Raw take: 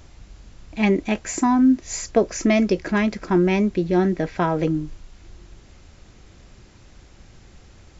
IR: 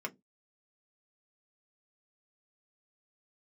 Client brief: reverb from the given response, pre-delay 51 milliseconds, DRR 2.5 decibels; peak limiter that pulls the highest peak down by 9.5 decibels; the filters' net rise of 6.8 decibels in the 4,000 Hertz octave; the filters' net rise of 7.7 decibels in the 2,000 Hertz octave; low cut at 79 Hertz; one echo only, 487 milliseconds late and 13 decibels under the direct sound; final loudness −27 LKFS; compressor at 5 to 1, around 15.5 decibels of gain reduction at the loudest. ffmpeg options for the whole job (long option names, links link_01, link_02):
-filter_complex "[0:a]highpass=79,equalizer=frequency=2000:width_type=o:gain=7.5,equalizer=frequency=4000:width_type=o:gain=6.5,acompressor=threshold=-30dB:ratio=5,alimiter=limit=-24dB:level=0:latency=1,aecho=1:1:487:0.224,asplit=2[link_01][link_02];[1:a]atrim=start_sample=2205,adelay=51[link_03];[link_02][link_03]afir=irnorm=-1:irlink=0,volume=-4.5dB[link_04];[link_01][link_04]amix=inputs=2:normalize=0,volume=5.5dB"